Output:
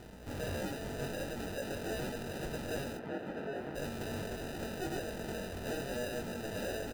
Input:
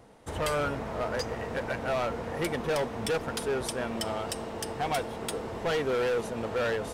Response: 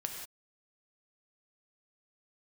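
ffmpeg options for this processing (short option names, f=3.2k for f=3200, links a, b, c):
-filter_complex "[0:a]acrossover=split=690|910[a][b][c];[a]alimiter=level_in=13dB:limit=-24dB:level=0:latency=1:release=95,volume=-13dB[d];[d][b][c]amix=inputs=3:normalize=0,aeval=exprs='val(0)+0.00141*(sin(2*PI*60*n/s)+sin(2*PI*2*60*n/s)/2+sin(2*PI*3*60*n/s)/3+sin(2*PI*4*60*n/s)/4+sin(2*PI*5*60*n/s)/5)':c=same,acrusher=samples=40:mix=1:aa=0.000001,asoftclip=type=tanh:threshold=-37dB,acrusher=bits=8:mix=0:aa=0.000001,asplit=3[e][f][g];[e]afade=t=out:st=2.96:d=0.02[h];[f]highpass=160,lowpass=2.1k,afade=t=in:st=2.96:d=0.02,afade=t=out:st=3.74:d=0.02[i];[g]afade=t=in:st=3.74:d=0.02[j];[h][i][j]amix=inputs=3:normalize=0,asplit=2[k][l];[l]adelay=21,volume=-5.5dB[m];[k][m]amix=inputs=2:normalize=0,aecho=1:1:837:0.0944,volume=1dB"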